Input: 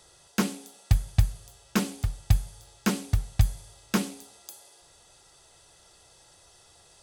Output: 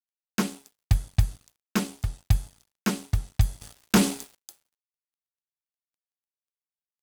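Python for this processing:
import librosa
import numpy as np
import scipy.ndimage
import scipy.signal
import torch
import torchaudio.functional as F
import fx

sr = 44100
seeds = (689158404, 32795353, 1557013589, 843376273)

y = fx.notch(x, sr, hz=530.0, q=17.0)
y = fx.leveller(y, sr, passes=3, at=(3.61, 4.35))
y = np.sign(y) * np.maximum(np.abs(y) - 10.0 ** (-46.0 / 20.0), 0.0)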